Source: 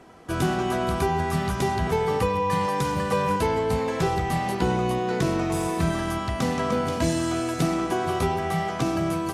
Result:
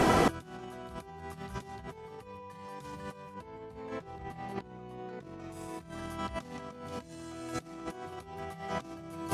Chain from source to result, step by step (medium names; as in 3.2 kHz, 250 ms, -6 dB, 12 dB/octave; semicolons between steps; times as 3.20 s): 3.34–5.40 s: treble shelf 3.9 kHz -10 dB; compressor with a negative ratio -40 dBFS, ratio -0.5; trim +6.5 dB